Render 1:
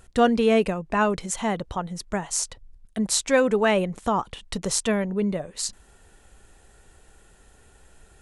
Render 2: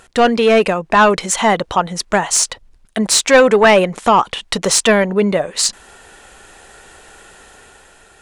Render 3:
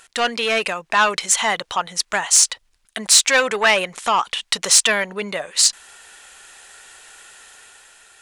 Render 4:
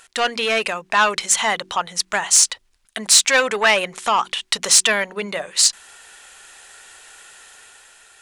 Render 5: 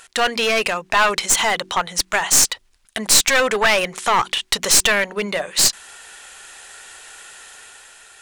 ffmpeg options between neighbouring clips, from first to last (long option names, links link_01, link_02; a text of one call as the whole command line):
ffmpeg -i in.wav -filter_complex "[0:a]asplit=2[link_01][link_02];[link_02]highpass=frequency=720:poles=1,volume=18dB,asoftclip=type=tanh:threshold=-3dB[link_03];[link_01][link_03]amix=inputs=2:normalize=0,lowpass=frequency=4800:poles=1,volume=-6dB,dynaudnorm=framelen=150:gausssize=9:maxgain=5dB,volume=1.5dB" out.wav
ffmpeg -i in.wav -af "tiltshelf=frequency=840:gain=-9.5,volume=-7.5dB" out.wav
ffmpeg -i in.wav -af "bandreject=frequency=46.79:width_type=h:width=4,bandreject=frequency=93.58:width_type=h:width=4,bandreject=frequency=140.37:width_type=h:width=4,bandreject=frequency=187.16:width_type=h:width=4,bandreject=frequency=233.95:width_type=h:width=4,bandreject=frequency=280.74:width_type=h:width=4,bandreject=frequency=327.53:width_type=h:width=4,bandreject=frequency=374.32:width_type=h:width=4" out.wav
ffmpeg -i in.wav -filter_complex "[0:a]asplit=2[link_01][link_02];[link_02]alimiter=limit=-9.5dB:level=0:latency=1:release=12,volume=-3dB[link_03];[link_01][link_03]amix=inputs=2:normalize=0,aeval=exprs='clip(val(0),-1,0.188)':channel_layout=same,volume=-1dB" out.wav